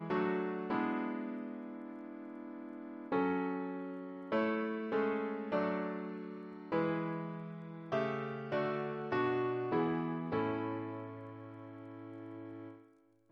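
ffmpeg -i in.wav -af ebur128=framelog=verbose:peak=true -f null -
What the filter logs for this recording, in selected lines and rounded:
Integrated loudness:
  I:         -37.7 LUFS
  Threshold: -48.2 LUFS
Loudness range:
  LRA:         3.9 LU
  Threshold: -57.8 LUFS
  LRA low:   -40.2 LUFS
  LRA high:  -36.3 LUFS
True peak:
  Peak:      -21.4 dBFS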